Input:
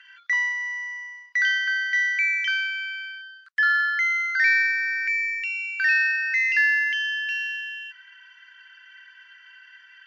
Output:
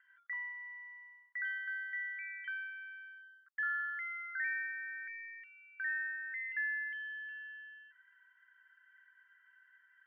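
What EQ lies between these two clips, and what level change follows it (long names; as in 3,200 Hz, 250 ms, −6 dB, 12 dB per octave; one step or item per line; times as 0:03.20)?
Savitzky-Golay smoothing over 41 samples
high-pass filter 1,300 Hz 12 dB per octave
high-frequency loss of the air 480 metres
−8.0 dB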